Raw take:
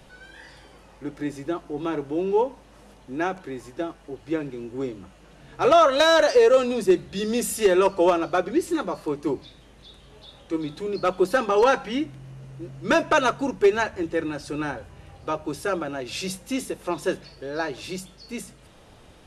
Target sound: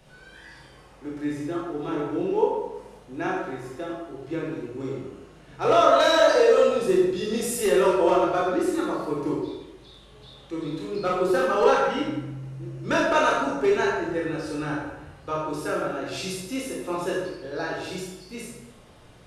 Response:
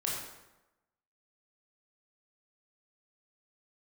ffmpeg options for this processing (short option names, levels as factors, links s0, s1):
-filter_complex "[1:a]atrim=start_sample=2205[s0];[0:a][s0]afir=irnorm=-1:irlink=0,volume=0.562"